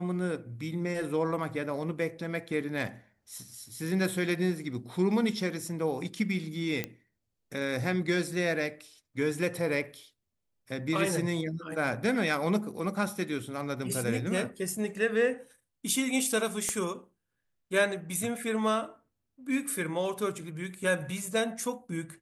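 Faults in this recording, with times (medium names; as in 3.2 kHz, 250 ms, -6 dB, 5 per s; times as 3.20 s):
6.84 s: pop -16 dBFS
16.69 s: pop -16 dBFS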